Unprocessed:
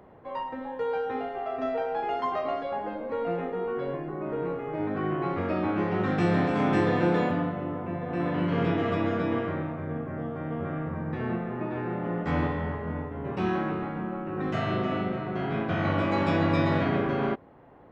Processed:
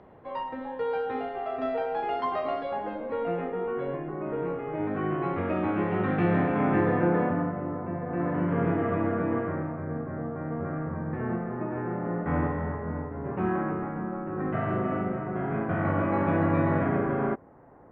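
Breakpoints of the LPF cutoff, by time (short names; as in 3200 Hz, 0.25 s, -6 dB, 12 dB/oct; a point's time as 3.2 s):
LPF 24 dB/oct
2.75 s 4900 Hz
3.53 s 3000 Hz
5.89 s 3000 Hz
7.17 s 1900 Hz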